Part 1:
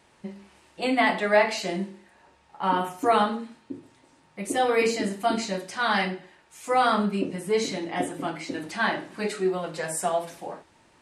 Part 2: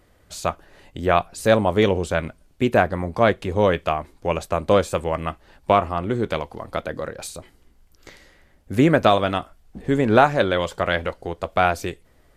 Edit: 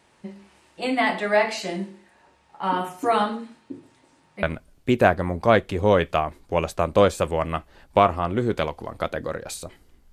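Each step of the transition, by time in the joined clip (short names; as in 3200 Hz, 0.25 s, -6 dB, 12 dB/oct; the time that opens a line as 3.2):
part 1
4.43 switch to part 2 from 2.16 s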